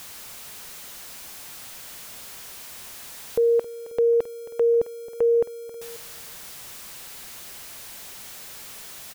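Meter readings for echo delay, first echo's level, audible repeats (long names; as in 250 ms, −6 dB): 269 ms, −15.5 dB, 2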